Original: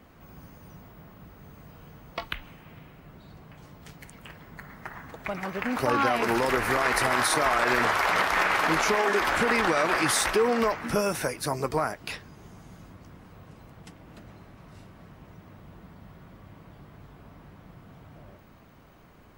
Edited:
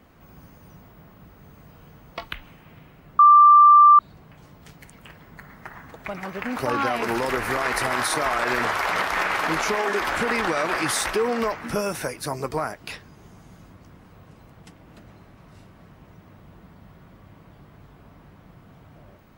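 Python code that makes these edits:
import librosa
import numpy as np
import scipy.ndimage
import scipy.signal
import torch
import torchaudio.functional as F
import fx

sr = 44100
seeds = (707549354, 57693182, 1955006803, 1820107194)

y = fx.edit(x, sr, fx.insert_tone(at_s=3.19, length_s=0.8, hz=1180.0, db=-8.0), tone=tone)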